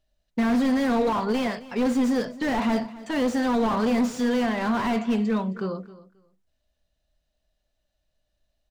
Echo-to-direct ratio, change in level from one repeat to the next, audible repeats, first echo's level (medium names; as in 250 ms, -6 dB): -18.0 dB, -14.5 dB, 2, -18.0 dB